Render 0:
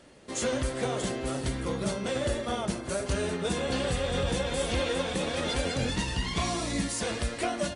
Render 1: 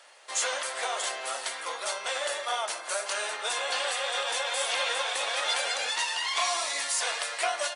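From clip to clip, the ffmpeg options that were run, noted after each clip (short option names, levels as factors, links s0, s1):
-af "highpass=f=720:w=0.5412,highpass=f=720:w=1.3066,volume=1.88"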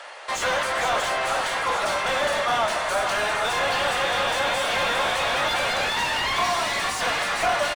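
-filter_complex "[0:a]acontrast=86,asplit=8[s0][s1][s2][s3][s4][s5][s6][s7];[s1]adelay=460,afreqshift=53,volume=0.355[s8];[s2]adelay=920,afreqshift=106,volume=0.202[s9];[s3]adelay=1380,afreqshift=159,volume=0.115[s10];[s4]adelay=1840,afreqshift=212,volume=0.0661[s11];[s5]adelay=2300,afreqshift=265,volume=0.0376[s12];[s6]adelay=2760,afreqshift=318,volume=0.0214[s13];[s7]adelay=3220,afreqshift=371,volume=0.0122[s14];[s0][s8][s9][s10][s11][s12][s13][s14]amix=inputs=8:normalize=0,asplit=2[s15][s16];[s16]highpass=f=720:p=1,volume=15.8,asoftclip=type=tanh:threshold=0.447[s17];[s15][s17]amix=inputs=2:normalize=0,lowpass=f=1200:p=1,volume=0.501,volume=0.596"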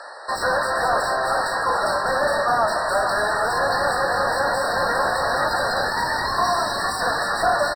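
-af "afftfilt=real='re*eq(mod(floor(b*sr/1024/1900),2),0)':imag='im*eq(mod(floor(b*sr/1024/1900),2),0)':win_size=1024:overlap=0.75,volume=1.5"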